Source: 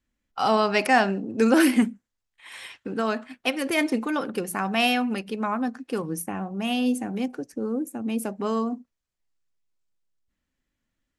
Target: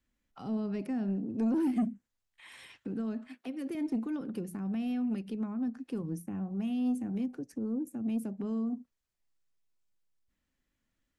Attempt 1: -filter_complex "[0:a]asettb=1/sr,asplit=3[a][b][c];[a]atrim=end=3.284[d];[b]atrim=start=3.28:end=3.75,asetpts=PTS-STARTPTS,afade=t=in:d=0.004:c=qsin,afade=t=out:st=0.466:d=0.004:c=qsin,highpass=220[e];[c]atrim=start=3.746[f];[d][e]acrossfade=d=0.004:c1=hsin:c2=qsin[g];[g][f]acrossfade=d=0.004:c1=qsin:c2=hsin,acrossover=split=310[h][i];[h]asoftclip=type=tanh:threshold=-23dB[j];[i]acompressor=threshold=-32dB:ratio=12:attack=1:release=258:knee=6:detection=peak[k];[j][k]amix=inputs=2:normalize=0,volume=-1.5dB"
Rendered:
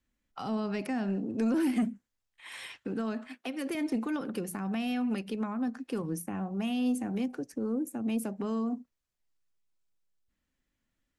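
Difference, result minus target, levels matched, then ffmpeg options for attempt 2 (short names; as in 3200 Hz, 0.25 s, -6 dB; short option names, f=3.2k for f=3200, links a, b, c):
compressor: peak gain reduction -11 dB
-filter_complex "[0:a]asettb=1/sr,asplit=3[a][b][c];[a]atrim=end=3.284[d];[b]atrim=start=3.28:end=3.75,asetpts=PTS-STARTPTS,afade=t=in:d=0.004:c=qsin,afade=t=out:st=0.466:d=0.004:c=qsin,highpass=220[e];[c]atrim=start=3.746[f];[d][e]acrossfade=d=0.004:c1=hsin:c2=qsin[g];[g][f]acrossfade=d=0.004:c1=qsin:c2=hsin,acrossover=split=310[h][i];[h]asoftclip=type=tanh:threshold=-23dB[j];[i]acompressor=threshold=-44dB:ratio=12:attack=1:release=258:knee=6:detection=peak[k];[j][k]amix=inputs=2:normalize=0,volume=-1.5dB"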